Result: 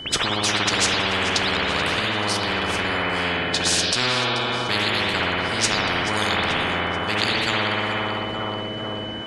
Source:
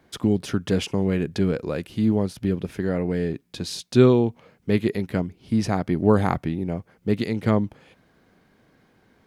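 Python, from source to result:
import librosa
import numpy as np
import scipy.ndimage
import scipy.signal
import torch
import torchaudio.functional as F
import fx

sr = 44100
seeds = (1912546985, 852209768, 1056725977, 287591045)

p1 = fx.spec_quant(x, sr, step_db=15)
p2 = scipy.signal.sosfilt(scipy.signal.butter(4, 9100.0, 'lowpass', fs=sr, output='sos'), p1)
p3 = fx.comb_fb(p2, sr, f0_hz=63.0, decay_s=0.23, harmonics='all', damping=0.0, mix_pct=50)
p4 = p3 + fx.echo_feedback(p3, sr, ms=434, feedback_pct=46, wet_db=-16, dry=0)
p5 = p4 + 10.0 ** (-30.0 / 20.0) * np.sin(2.0 * np.pi * 3000.0 * np.arange(len(p4)) / sr)
p6 = fx.rev_spring(p5, sr, rt60_s=1.2, pass_ms=(57,), chirp_ms=65, drr_db=-6.5)
p7 = fx.spectral_comp(p6, sr, ratio=10.0)
y = p7 * librosa.db_to_amplitude(-2.0)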